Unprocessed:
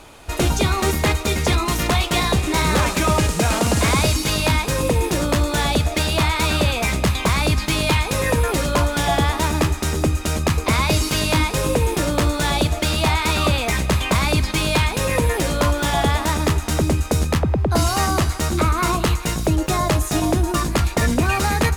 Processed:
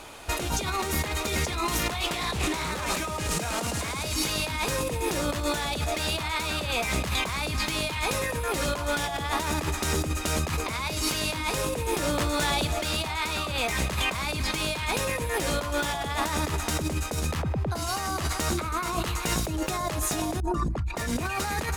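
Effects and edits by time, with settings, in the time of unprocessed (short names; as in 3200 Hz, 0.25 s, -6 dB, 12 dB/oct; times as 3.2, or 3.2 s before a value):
2.09–2.72 Doppler distortion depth 0.27 ms
12.05–12.78 compressor 5:1, threshold -19 dBFS
20.4–20.96 formant sharpening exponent 2
whole clip: low shelf 330 Hz -6.5 dB; negative-ratio compressor -26 dBFS, ratio -1; gain -2.5 dB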